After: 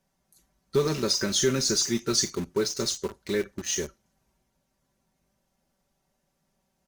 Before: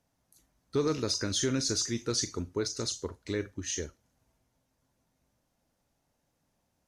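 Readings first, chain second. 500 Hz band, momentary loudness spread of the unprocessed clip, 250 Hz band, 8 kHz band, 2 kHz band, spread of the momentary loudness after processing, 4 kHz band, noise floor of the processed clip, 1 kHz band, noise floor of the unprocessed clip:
+6.0 dB, 7 LU, +3.5 dB, +5.5 dB, +6.0 dB, 7 LU, +6.0 dB, −76 dBFS, +5.0 dB, −78 dBFS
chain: comb filter 5.2 ms, depth 74%
in parallel at −5.5 dB: bit-depth reduction 6 bits, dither none

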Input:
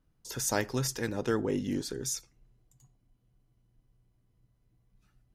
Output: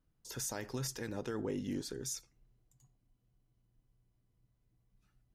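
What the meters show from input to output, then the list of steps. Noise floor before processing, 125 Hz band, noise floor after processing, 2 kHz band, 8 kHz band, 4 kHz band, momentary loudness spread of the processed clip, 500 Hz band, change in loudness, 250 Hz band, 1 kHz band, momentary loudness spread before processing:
−73 dBFS, −7.0 dB, −78 dBFS, −10.5 dB, −7.0 dB, −7.0 dB, 3 LU, −8.5 dB, −7.5 dB, −7.0 dB, −10.5 dB, 5 LU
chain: brickwall limiter −23 dBFS, peak gain reduction 8 dB
level −5.5 dB

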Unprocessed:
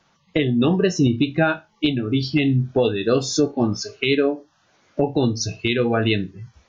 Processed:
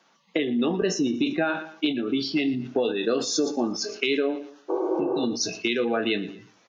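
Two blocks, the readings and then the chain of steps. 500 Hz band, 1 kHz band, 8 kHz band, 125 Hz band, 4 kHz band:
−4.5 dB, −4.0 dB, can't be measured, −17.5 dB, −3.0 dB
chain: healed spectral selection 0:04.72–0:05.21, 300–2,100 Hz after
high-pass filter 220 Hz 24 dB per octave
downward compressor 2.5 to 1, threshold −23 dBFS, peak gain reduction 7 dB
repeating echo 117 ms, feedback 33%, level −18.5 dB
level that may fall only so fast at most 98 dB per second

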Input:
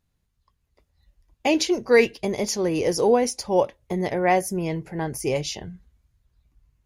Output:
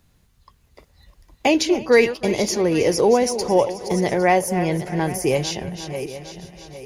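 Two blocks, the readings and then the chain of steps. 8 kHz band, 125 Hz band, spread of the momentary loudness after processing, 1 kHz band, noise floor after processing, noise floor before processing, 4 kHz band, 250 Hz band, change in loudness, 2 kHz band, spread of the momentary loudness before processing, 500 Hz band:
+3.5 dB, +5.0 dB, 14 LU, +3.5 dB, −60 dBFS, −74 dBFS, +3.5 dB, +4.0 dB, +3.0 dB, +3.5 dB, 11 LU, +3.5 dB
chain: feedback delay that plays each chunk backwards 404 ms, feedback 44%, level −13 dB
feedback echo with a high-pass in the loop 315 ms, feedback 55%, high-pass 420 Hz, level −19 dB
multiband upward and downward compressor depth 40%
level +3.5 dB

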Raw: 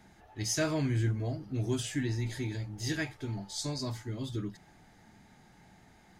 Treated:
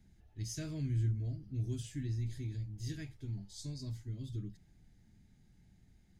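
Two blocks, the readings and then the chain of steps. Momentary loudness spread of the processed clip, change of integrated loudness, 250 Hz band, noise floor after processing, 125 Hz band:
10 LU, −6.0 dB, −9.5 dB, −66 dBFS, −2.5 dB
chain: guitar amp tone stack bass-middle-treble 10-0-1
level +9 dB

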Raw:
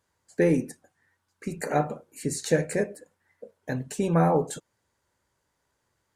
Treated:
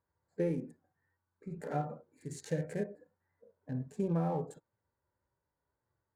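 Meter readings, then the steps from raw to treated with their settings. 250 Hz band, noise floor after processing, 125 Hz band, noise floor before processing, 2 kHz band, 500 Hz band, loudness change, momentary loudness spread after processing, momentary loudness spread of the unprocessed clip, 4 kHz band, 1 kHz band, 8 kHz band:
−9.5 dB, below −85 dBFS, −8.0 dB, −77 dBFS, −17.0 dB, −11.5 dB, −10.5 dB, 16 LU, 15 LU, −17.0 dB, −12.0 dB, −18.0 dB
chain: adaptive Wiener filter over 15 samples
in parallel at −3 dB: output level in coarse steps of 13 dB
on the sum: harmonic and percussive parts rebalanced percussive −16 dB
downward compressor, threshold −22 dBFS, peak gain reduction 6.5 dB
level −6.5 dB

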